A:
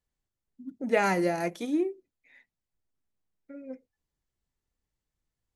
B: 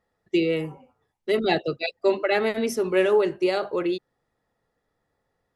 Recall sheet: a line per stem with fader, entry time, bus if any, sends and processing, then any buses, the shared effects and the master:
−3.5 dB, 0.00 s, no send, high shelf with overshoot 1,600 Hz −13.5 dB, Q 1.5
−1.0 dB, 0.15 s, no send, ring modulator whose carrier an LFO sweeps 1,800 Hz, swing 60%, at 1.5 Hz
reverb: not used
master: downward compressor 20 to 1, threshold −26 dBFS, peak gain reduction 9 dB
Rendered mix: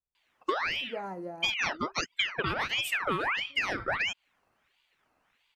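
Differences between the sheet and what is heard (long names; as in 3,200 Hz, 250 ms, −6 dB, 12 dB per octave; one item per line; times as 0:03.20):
stem A −3.5 dB → −13.5 dB
stem B −1.0 dB → +6.0 dB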